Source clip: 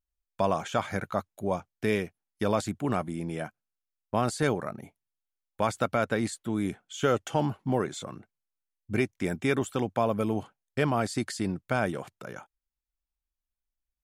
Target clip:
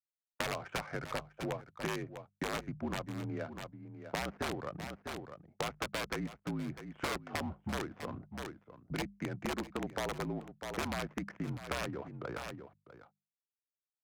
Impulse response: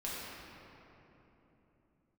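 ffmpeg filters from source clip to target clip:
-filter_complex "[0:a]acrossover=split=610|2000[link_01][link_02][link_03];[link_03]aeval=exprs='(mod(33.5*val(0)+1,2)-1)/33.5':channel_layout=same[link_04];[link_01][link_02][link_04]amix=inputs=3:normalize=0,agate=range=-20dB:threshold=-49dB:ratio=16:detection=peak,highpass=frequency=150:width_type=q:width=0.5412,highpass=frequency=150:width_type=q:width=1.307,lowpass=frequency=2600:width_type=q:width=0.5176,lowpass=frequency=2600:width_type=q:width=0.7071,lowpass=frequency=2600:width_type=q:width=1.932,afreqshift=-53,aeval=exprs='(mod(8.91*val(0)+1,2)-1)/8.91':channel_layout=same,adynamicsmooth=sensitivity=8:basefreq=830,asplit=2[link_05][link_06];[link_06]aecho=0:1:649:0.133[link_07];[link_05][link_07]amix=inputs=2:normalize=0,acompressor=threshold=-40dB:ratio=4,bandreject=frequency=50:width_type=h:width=6,bandreject=frequency=100:width_type=h:width=6,bandreject=frequency=150:width_type=h:width=6,bandreject=frequency=200:width_type=h:width=6,volume=3.5dB"

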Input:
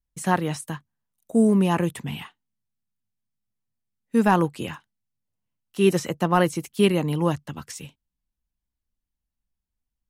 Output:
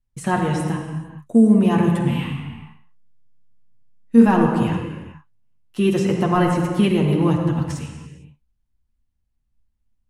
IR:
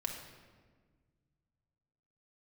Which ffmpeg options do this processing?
-filter_complex "[0:a]bass=frequency=250:gain=7,treble=frequency=4000:gain=-5,acompressor=threshold=-19dB:ratio=1.5,asettb=1/sr,asplit=3[link_01][link_02][link_03];[link_01]atrim=end=2.084[link_04];[link_02]atrim=start=2.08:end=4.26,asetpts=PTS-STARTPTS,afade=type=in:duration=0.004:curve=qsin,afade=type=out:start_time=2.176:duration=0.004:curve=qsin,aecho=1:1:30|64.5|104.2|149.8|202.3:0.631|0.398|0.251|0.158|0.1,atrim=end_sample=96138[link_05];[link_03]atrim=start=4.256[link_06];[link_04][link_05]acrossfade=duration=0.004:curve1=hsin:curve2=qsin[link_07];[link_07][link_06]acrossfade=duration=0.004:curve1=qsin:curve2=hsin[link_08];[1:a]atrim=start_sample=2205,afade=type=out:start_time=0.29:duration=0.01,atrim=end_sample=13230,asetrate=22932,aresample=44100[link_09];[link_08][link_09]afir=irnorm=-1:irlink=0,volume=-1dB"

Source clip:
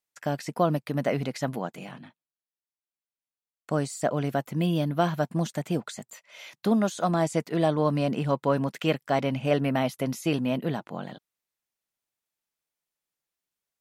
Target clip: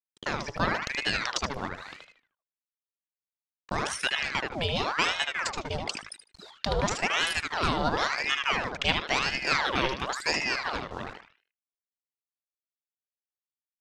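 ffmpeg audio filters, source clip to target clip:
ffmpeg -i in.wav -filter_complex "[0:a]anlmdn=2.51,tiltshelf=frequency=1200:gain=-8.5,asplit=2[link_01][link_02];[link_02]acompressor=threshold=-42dB:ratio=10,volume=3dB[link_03];[link_01][link_03]amix=inputs=2:normalize=0,acrusher=bits=8:mix=0:aa=0.000001,lowpass=frequency=5600:width_type=q:width=1.6,asplit=2[link_04][link_05];[link_05]adelay=76,lowpass=frequency=3400:poles=1,volume=-3.5dB,asplit=2[link_06][link_07];[link_07]adelay=76,lowpass=frequency=3400:poles=1,volume=0.35,asplit=2[link_08][link_09];[link_09]adelay=76,lowpass=frequency=3400:poles=1,volume=0.35,asplit=2[link_10][link_11];[link_11]adelay=76,lowpass=frequency=3400:poles=1,volume=0.35,asplit=2[link_12][link_13];[link_13]adelay=76,lowpass=frequency=3400:poles=1,volume=0.35[link_14];[link_06][link_08][link_10][link_12][link_14]amix=inputs=5:normalize=0[link_15];[link_04][link_15]amix=inputs=2:normalize=0,aeval=exprs='val(0)*sin(2*PI*1300*n/s+1300*0.8/0.96*sin(2*PI*0.96*n/s))':channel_layout=same,volume=1.5dB" out.wav

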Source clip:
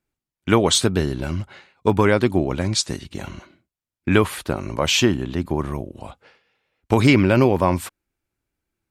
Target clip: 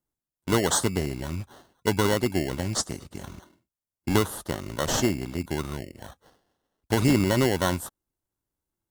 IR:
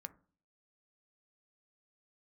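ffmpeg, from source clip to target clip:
-filter_complex "[0:a]highshelf=frequency=6300:gain=6,acrossover=split=4300[link_01][link_02];[link_01]acrusher=samples=18:mix=1:aa=0.000001[link_03];[link_03][link_02]amix=inputs=2:normalize=0,volume=-6.5dB"

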